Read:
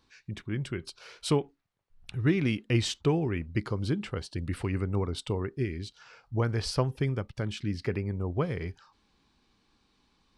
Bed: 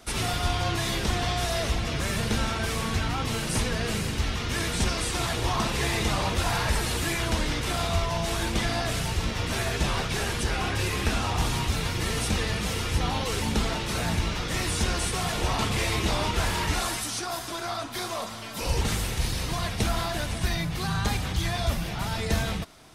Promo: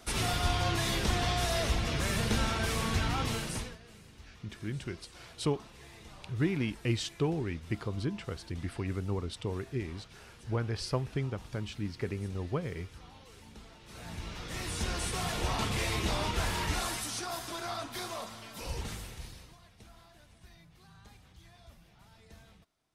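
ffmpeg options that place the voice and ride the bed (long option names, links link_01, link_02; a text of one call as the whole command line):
ffmpeg -i stem1.wav -i stem2.wav -filter_complex "[0:a]adelay=4150,volume=-4.5dB[link_01];[1:a]volume=17dB,afade=type=out:start_time=3.23:duration=0.55:silence=0.0749894,afade=type=in:start_time=13.8:duration=1.41:silence=0.1,afade=type=out:start_time=17.81:duration=1.77:silence=0.0668344[link_02];[link_01][link_02]amix=inputs=2:normalize=0" out.wav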